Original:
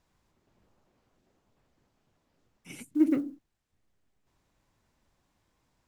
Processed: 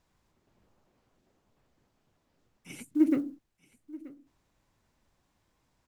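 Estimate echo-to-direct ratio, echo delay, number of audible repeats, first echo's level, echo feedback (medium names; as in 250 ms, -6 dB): -20.0 dB, 931 ms, 1, -20.0 dB, no regular repeats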